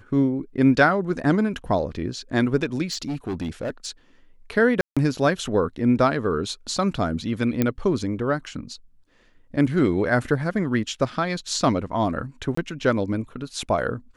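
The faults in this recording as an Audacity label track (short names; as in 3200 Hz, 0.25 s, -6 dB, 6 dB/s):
2.910000	3.900000	clipped -23.5 dBFS
4.810000	4.970000	gap 0.156 s
7.620000	7.620000	pop -8 dBFS
12.550000	12.570000	gap 24 ms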